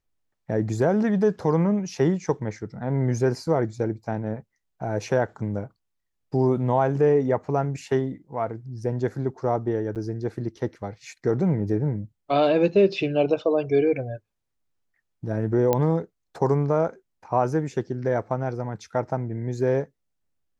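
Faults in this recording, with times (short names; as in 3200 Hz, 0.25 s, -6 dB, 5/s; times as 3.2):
9.95–9.96 gap 8.2 ms
15.73 pop -9 dBFS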